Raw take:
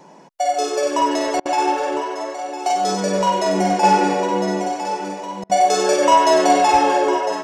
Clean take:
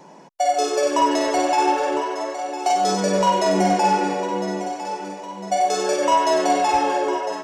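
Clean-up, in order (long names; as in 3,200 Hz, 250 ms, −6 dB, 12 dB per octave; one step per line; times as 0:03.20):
repair the gap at 0:01.40/0:05.44, 54 ms
level correction −4.5 dB, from 0:03.83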